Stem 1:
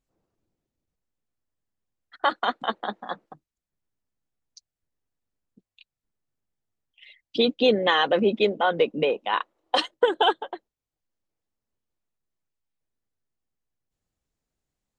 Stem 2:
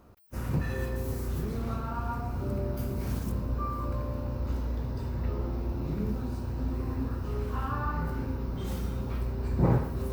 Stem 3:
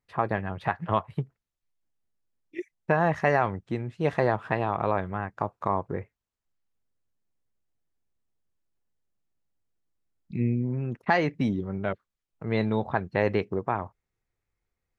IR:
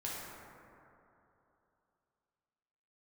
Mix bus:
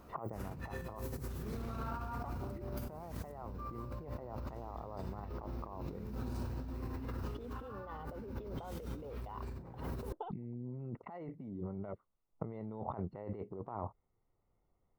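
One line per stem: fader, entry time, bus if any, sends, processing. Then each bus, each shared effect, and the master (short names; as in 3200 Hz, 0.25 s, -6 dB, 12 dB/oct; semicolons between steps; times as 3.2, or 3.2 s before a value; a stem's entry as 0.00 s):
-0.5 dB, 0.00 s, bus A, no send, compressor 12:1, threshold -26 dBFS, peak gain reduction 13 dB; auto duck -21 dB, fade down 0.45 s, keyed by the third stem
-4.5 dB, 0.00 s, no bus, no send, dry
0.0 dB, 0.00 s, bus A, no send, dry
bus A: 0.0 dB, polynomial smoothing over 65 samples; compressor 3:1, threshold -31 dBFS, peak gain reduction 9.5 dB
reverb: off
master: low shelf 490 Hz -3 dB; negative-ratio compressor -43 dBFS, ratio -1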